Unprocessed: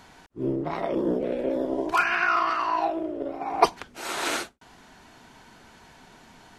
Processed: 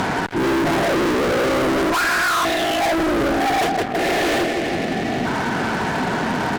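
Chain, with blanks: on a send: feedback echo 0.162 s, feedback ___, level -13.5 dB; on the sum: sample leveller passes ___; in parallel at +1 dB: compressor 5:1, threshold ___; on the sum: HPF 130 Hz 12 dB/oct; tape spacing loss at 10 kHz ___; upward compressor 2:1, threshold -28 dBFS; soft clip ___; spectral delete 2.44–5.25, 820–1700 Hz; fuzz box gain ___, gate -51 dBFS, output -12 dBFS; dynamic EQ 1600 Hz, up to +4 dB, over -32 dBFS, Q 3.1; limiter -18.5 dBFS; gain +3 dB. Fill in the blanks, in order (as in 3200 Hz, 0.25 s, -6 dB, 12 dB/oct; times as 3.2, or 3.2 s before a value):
45%, 1, -38 dBFS, 43 dB, -23.5 dBFS, 42 dB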